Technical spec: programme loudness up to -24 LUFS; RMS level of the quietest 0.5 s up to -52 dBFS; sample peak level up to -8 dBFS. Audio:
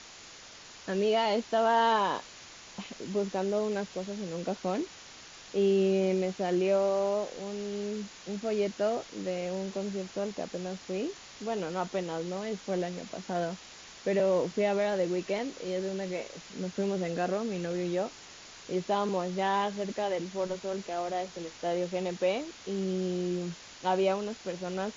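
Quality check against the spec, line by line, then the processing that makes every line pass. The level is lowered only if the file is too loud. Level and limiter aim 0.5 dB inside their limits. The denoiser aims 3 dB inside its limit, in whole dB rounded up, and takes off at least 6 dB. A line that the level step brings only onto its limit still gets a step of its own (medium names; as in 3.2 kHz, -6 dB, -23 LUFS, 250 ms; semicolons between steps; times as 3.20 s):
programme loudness -31.5 LUFS: pass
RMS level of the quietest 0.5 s -50 dBFS: fail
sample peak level -14.5 dBFS: pass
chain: noise reduction 6 dB, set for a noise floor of -50 dBFS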